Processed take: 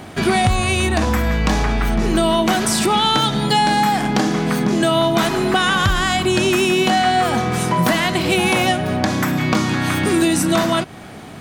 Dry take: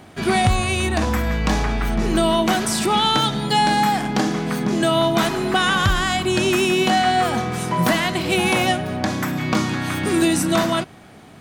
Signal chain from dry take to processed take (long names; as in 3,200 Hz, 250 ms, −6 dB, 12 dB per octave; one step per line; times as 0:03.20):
downward compressor 2 to 1, threshold −27 dBFS, peak gain reduction 8.5 dB
level +8.5 dB